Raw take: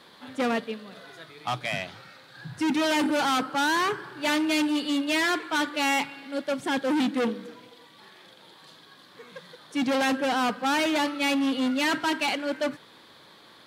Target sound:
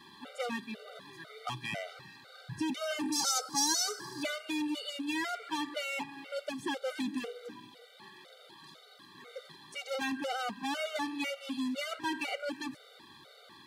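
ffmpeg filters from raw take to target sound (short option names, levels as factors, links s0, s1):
-filter_complex "[0:a]acrossover=split=2200|6000[s0][s1][s2];[s0]acompressor=threshold=0.0251:ratio=4[s3];[s1]acompressor=threshold=0.01:ratio=4[s4];[s2]acompressor=threshold=0.00355:ratio=4[s5];[s3][s4][s5]amix=inputs=3:normalize=0,asettb=1/sr,asplit=3[s6][s7][s8];[s6]atrim=end=3.124[s9];[s7]atrim=start=3.12:end=4.23,asetpts=PTS-STARTPTS,afade=t=in:d=0.004:c=qsin,afade=t=out:st=1.106:d=0.004:c=qsin,highshelf=f=3900:t=q:w=3:g=13[s10];[s8]atrim=start=4.226[s11];[s9][s10]acrossfade=d=0.004:c1=hsin:c2=qsin[s12];[s12][s11]acrossfade=d=0.004:c1=qsin:c2=hsin,afftfilt=real='re*gt(sin(2*PI*2*pts/sr)*(1-2*mod(floor(b*sr/1024/390),2)),0)':imag='im*gt(sin(2*PI*2*pts/sr)*(1-2*mod(floor(b*sr/1024/390),2)),0)':win_size=1024:overlap=0.75"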